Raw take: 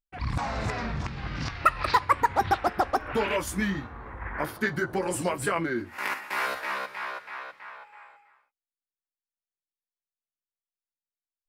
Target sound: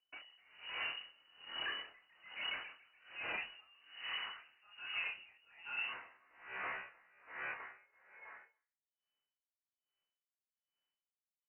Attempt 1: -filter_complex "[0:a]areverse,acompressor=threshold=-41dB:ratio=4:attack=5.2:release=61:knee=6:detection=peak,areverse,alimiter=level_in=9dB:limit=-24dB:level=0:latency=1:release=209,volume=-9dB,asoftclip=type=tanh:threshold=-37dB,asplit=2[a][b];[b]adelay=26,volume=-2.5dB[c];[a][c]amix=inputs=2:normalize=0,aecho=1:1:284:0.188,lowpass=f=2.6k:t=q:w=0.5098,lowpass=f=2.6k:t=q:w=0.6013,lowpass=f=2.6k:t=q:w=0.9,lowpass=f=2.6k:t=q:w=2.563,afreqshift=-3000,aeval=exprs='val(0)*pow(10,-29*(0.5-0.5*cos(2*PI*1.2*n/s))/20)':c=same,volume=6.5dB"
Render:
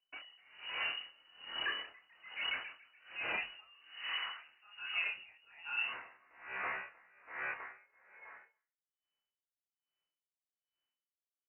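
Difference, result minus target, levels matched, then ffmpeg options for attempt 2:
soft clip: distortion -8 dB
-filter_complex "[0:a]areverse,acompressor=threshold=-41dB:ratio=4:attack=5.2:release=61:knee=6:detection=peak,areverse,alimiter=level_in=9dB:limit=-24dB:level=0:latency=1:release=209,volume=-9dB,asoftclip=type=tanh:threshold=-44.5dB,asplit=2[a][b];[b]adelay=26,volume=-2.5dB[c];[a][c]amix=inputs=2:normalize=0,aecho=1:1:284:0.188,lowpass=f=2.6k:t=q:w=0.5098,lowpass=f=2.6k:t=q:w=0.6013,lowpass=f=2.6k:t=q:w=0.9,lowpass=f=2.6k:t=q:w=2.563,afreqshift=-3000,aeval=exprs='val(0)*pow(10,-29*(0.5-0.5*cos(2*PI*1.2*n/s))/20)':c=same,volume=6.5dB"

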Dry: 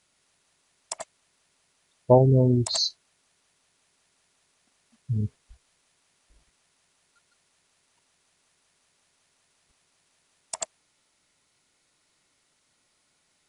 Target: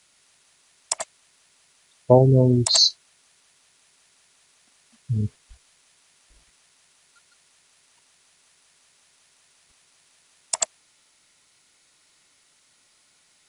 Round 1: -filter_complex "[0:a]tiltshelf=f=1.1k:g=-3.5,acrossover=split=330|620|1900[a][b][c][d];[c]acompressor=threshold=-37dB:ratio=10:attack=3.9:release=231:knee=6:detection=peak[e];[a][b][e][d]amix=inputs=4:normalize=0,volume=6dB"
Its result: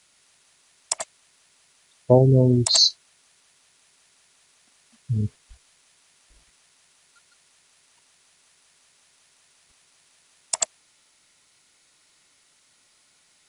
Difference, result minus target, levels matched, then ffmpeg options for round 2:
compressor: peak gain reduction +10.5 dB
-filter_complex "[0:a]tiltshelf=f=1.1k:g=-3.5,acrossover=split=330|620|1900[a][b][c][d];[c]acompressor=threshold=-25.5dB:ratio=10:attack=3.9:release=231:knee=6:detection=peak[e];[a][b][e][d]amix=inputs=4:normalize=0,volume=6dB"

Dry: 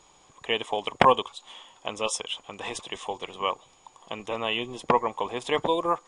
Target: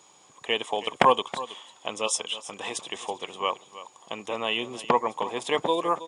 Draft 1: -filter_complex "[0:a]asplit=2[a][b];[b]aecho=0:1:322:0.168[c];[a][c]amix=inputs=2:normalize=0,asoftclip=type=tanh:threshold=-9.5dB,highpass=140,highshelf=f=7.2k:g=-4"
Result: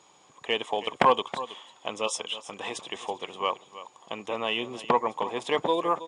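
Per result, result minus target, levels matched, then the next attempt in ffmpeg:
soft clip: distortion +9 dB; 8000 Hz band -4.5 dB
-filter_complex "[0:a]asplit=2[a][b];[b]aecho=0:1:322:0.168[c];[a][c]amix=inputs=2:normalize=0,asoftclip=type=tanh:threshold=-3.5dB,highpass=140,highshelf=f=7.2k:g=-4"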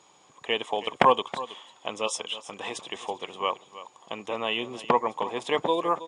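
8000 Hz band -5.5 dB
-filter_complex "[0:a]asplit=2[a][b];[b]aecho=0:1:322:0.168[c];[a][c]amix=inputs=2:normalize=0,asoftclip=type=tanh:threshold=-3.5dB,highpass=140,highshelf=f=7.2k:g=7.5"

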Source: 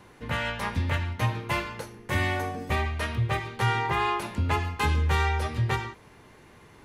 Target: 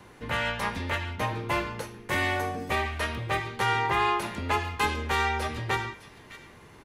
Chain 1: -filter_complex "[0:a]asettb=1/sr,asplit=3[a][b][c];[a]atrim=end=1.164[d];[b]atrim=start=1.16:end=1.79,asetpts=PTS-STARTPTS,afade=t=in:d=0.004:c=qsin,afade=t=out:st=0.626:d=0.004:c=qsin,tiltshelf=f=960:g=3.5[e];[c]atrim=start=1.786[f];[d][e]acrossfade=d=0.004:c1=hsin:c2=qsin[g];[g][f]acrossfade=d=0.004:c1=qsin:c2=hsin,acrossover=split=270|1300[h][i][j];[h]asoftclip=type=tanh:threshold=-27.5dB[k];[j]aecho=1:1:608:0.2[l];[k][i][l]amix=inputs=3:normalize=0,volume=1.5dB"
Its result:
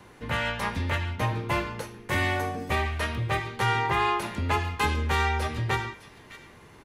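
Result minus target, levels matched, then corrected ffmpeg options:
soft clip: distortion -5 dB
-filter_complex "[0:a]asettb=1/sr,asplit=3[a][b][c];[a]atrim=end=1.164[d];[b]atrim=start=1.16:end=1.79,asetpts=PTS-STARTPTS,afade=t=in:d=0.004:c=qsin,afade=t=out:st=0.626:d=0.004:c=qsin,tiltshelf=f=960:g=3.5[e];[c]atrim=start=1.786[f];[d][e]acrossfade=d=0.004:c1=hsin:c2=qsin[g];[g][f]acrossfade=d=0.004:c1=qsin:c2=hsin,acrossover=split=270|1300[h][i][j];[h]asoftclip=type=tanh:threshold=-35.5dB[k];[j]aecho=1:1:608:0.2[l];[k][i][l]amix=inputs=3:normalize=0,volume=1.5dB"

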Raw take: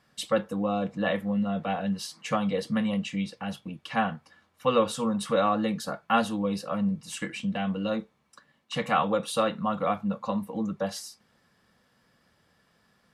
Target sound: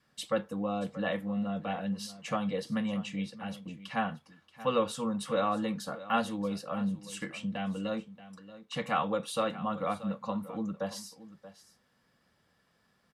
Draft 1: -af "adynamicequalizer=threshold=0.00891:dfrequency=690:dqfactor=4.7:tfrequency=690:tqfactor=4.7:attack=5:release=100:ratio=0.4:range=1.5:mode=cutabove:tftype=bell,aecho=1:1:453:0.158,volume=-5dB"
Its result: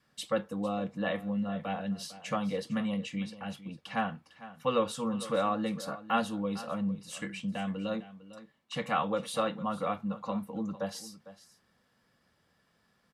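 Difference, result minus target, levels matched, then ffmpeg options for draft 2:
echo 0.177 s early
-af "adynamicequalizer=threshold=0.00891:dfrequency=690:dqfactor=4.7:tfrequency=690:tqfactor=4.7:attack=5:release=100:ratio=0.4:range=1.5:mode=cutabove:tftype=bell,aecho=1:1:630:0.158,volume=-5dB"

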